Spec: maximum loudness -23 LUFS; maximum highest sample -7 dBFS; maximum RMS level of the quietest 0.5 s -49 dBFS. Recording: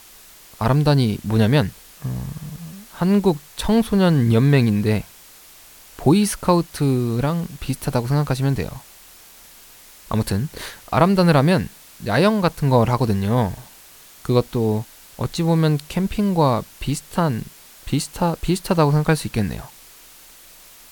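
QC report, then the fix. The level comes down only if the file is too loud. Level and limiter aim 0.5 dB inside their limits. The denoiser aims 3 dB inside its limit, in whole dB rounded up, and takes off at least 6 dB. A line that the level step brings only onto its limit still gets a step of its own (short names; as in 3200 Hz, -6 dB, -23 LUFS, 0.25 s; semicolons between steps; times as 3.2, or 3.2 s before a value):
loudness -20.0 LUFS: fail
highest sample -2.5 dBFS: fail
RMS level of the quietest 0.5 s -46 dBFS: fail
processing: gain -3.5 dB; limiter -7.5 dBFS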